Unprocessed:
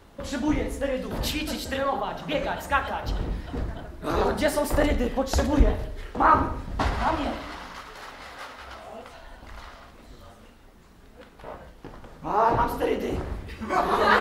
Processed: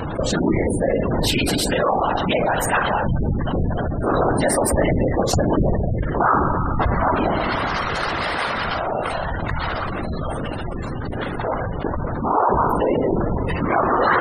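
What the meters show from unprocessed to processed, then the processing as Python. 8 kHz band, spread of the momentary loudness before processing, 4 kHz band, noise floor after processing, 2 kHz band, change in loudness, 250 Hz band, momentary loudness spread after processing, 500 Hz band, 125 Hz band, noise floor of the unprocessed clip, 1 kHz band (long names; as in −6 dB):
+10.5 dB, 20 LU, +7.0 dB, −26 dBFS, +6.0 dB, +5.0 dB, +7.5 dB, 8 LU, +7.0 dB, +10.0 dB, −51 dBFS, +5.5 dB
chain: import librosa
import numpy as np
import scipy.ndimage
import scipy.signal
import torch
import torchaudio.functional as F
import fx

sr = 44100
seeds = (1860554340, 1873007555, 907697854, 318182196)

y = fx.peak_eq(x, sr, hz=8900.0, db=9.0, octaves=0.24)
y = fx.rev_spring(y, sr, rt60_s=4.0, pass_ms=(45,), chirp_ms=40, drr_db=16.0)
y = fx.whisperise(y, sr, seeds[0])
y = fx.spec_gate(y, sr, threshold_db=-20, keep='strong')
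y = fx.env_flatten(y, sr, amount_pct=70)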